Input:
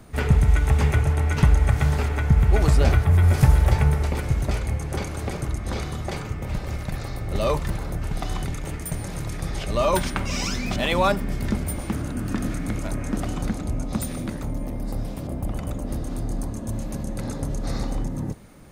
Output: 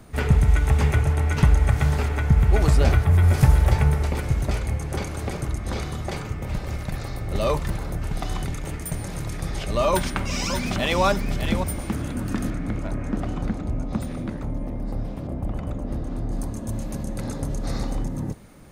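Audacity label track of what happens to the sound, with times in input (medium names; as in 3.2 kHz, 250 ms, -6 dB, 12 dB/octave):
9.890000	11.030000	echo throw 600 ms, feedback 15%, level -7.5 dB
12.500000	16.330000	low-pass 2 kHz 6 dB/octave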